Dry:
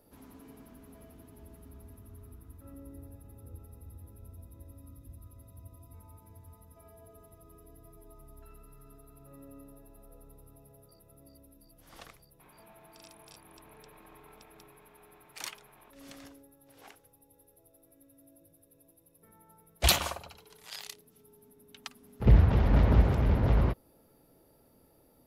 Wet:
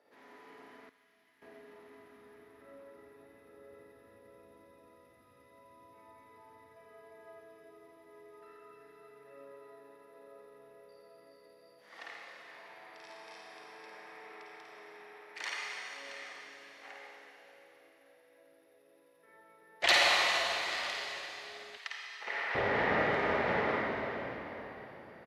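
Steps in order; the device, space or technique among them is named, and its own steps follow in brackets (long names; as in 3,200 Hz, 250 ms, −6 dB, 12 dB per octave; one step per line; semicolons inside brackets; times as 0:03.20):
station announcement (band-pass filter 460–4,600 Hz; parametric band 1,900 Hz +11 dB 0.41 octaves; loudspeakers that aren't time-aligned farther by 18 metres −5 dB, 29 metres −12 dB; convolution reverb RT60 4.1 s, pre-delay 43 ms, DRR −3 dB)
0:00.89–0:01.42: guitar amp tone stack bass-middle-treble 5-5-5
0:21.77–0:22.55: high-pass filter 1,000 Hz 12 dB per octave
level −1.5 dB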